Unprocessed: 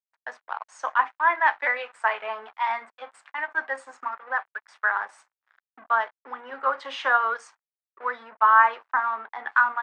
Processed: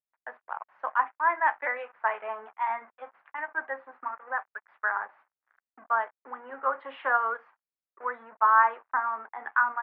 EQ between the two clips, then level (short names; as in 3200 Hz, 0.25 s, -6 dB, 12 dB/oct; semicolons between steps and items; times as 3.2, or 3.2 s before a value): Bessel low-pass 1600 Hz, order 6; -2.0 dB